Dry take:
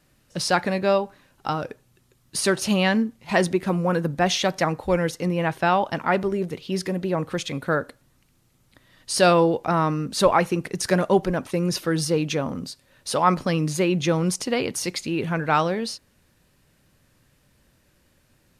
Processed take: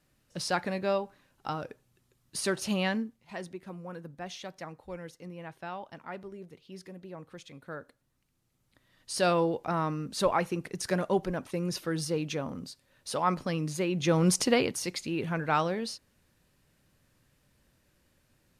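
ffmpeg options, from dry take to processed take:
-af "volume=12.5dB,afade=t=out:st=2.86:d=0.45:silence=0.281838,afade=t=in:st=7.61:d=1.81:silence=0.281838,afade=t=in:st=13.94:d=0.49:silence=0.316228,afade=t=out:st=14.43:d=0.34:silence=0.398107"

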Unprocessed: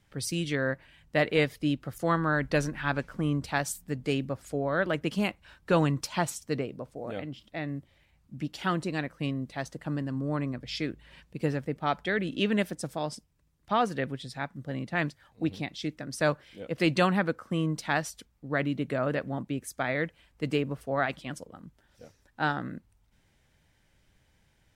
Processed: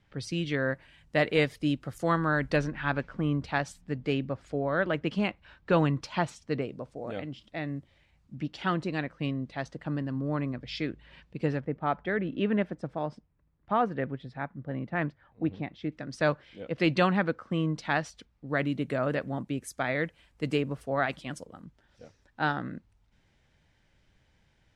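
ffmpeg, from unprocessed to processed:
-af "asetnsamples=n=441:p=0,asendcmd='0.71 lowpass f 9900;2.56 lowpass f 3800;6.62 lowpass f 7300;8.35 lowpass f 4400;11.6 lowpass f 1800;15.92 lowpass f 4400;18.49 lowpass f 11000;21.64 lowpass f 5800',lowpass=4.1k"

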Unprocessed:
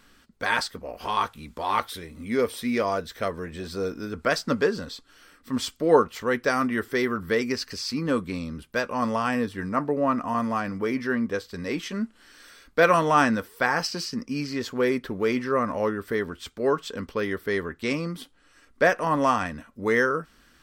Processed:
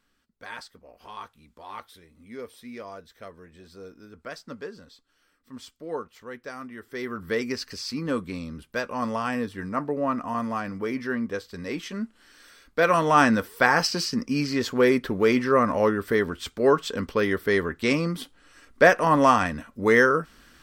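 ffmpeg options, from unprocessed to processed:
-af "volume=4dB,afade=t=in:st=6.82:d=0.54:silence=0.251189,afade=t=in:st=12.84:d=0.63:silence=0.473151"

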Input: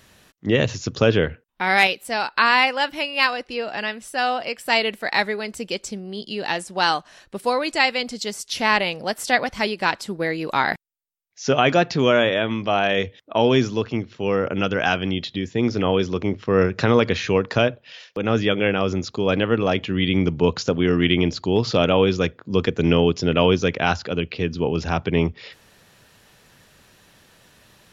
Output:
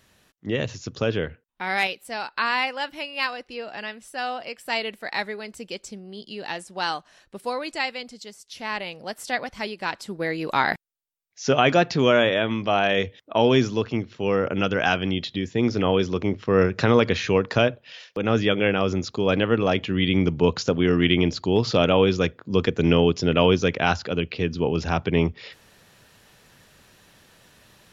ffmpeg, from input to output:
-af "volume=7dB,afade=t=out:st=7.67:d=0.73:silence=0.398107,afade=t=in:st=8.4:d=0.75:silence=0.421697,afade=t=in:st=9.85:d=0.65:silence=0.473151"

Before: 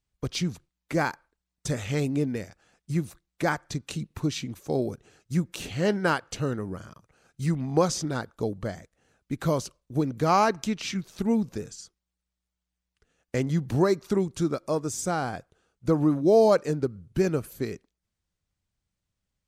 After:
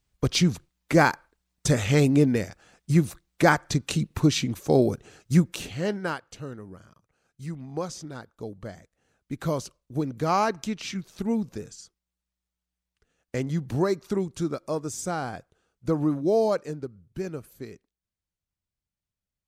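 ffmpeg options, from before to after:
-af "volume=14dB,afade=t=out:st=5.35:d=0.33:silence=0.375837,afade=t=out:st=5.68:d=0.63:silence=0.421697,afade=t=in:st=8.32:d=1.09:silence=0.446684,afade=t=out:st=16.13:d=0.76:silence=0.473151"

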